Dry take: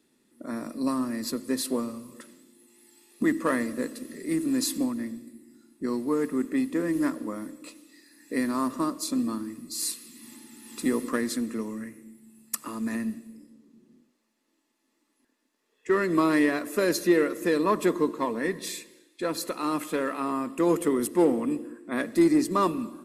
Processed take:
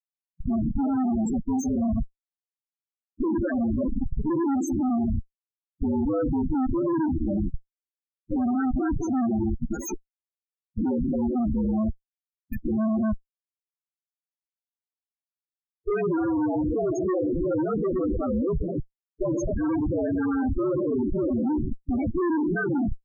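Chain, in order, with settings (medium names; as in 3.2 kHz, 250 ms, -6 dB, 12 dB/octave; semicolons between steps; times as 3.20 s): frequency axis rescaled in octaves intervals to 116%; Schmitt trigger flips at -37.5 dBFS; loudest bins only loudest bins 8; trim +8 dB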